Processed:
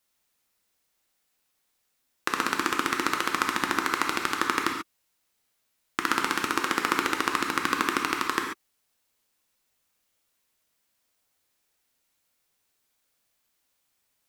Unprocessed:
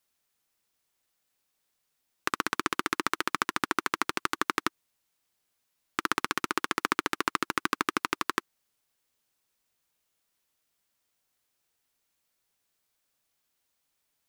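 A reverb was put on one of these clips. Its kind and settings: gated-style reverb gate 160 ms flat, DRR 1.5 dB; trim +1.5 dB

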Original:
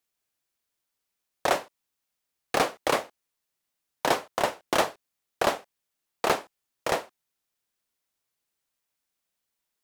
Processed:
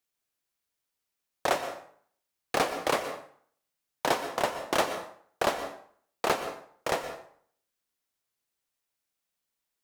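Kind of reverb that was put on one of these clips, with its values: plate-style reverb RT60 0.57 s, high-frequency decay 0.75×, pre-delay 105 ms, DRR 9 dB; trim -2.5 dB

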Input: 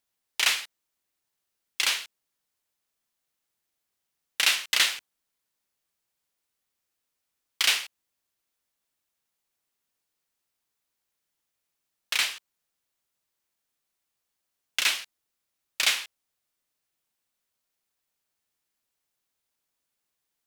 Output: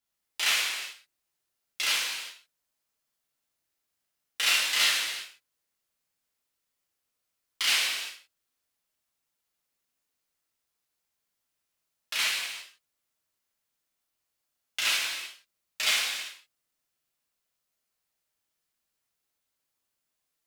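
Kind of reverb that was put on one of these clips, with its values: gated-style reverb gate 420 ms falling, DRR -7 dB; trim -8 dB

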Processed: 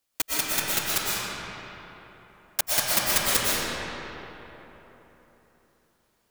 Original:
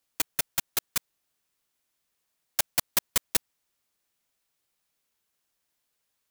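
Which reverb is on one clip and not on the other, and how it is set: algorithmic reverb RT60 3.8 s, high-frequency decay 0.55×, pre-delay 80 ms, DRR -8 dB

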